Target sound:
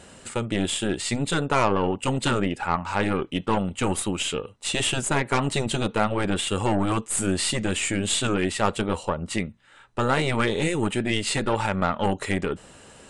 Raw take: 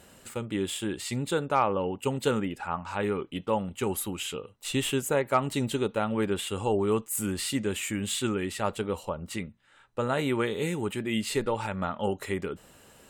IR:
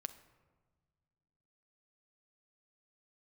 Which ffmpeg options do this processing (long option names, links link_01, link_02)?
-af "aeval=exprs='0.266*(cos(1*acos(clip(val(0)/0.266,-1,1)))-cos(1*PI/2))+0.015*(cos(8*acos(clip(val(0)/0.266,-1,1)))-cos(8*PI/2))':channel_layout=same,afftfilt=real='re*lt(hypot(re,im),0.316)':imag='im*lt(hypot(re,im),0.316)':win_size=1024:overlap=0.75,aresample=22050,aresample=44100,volume=7dB"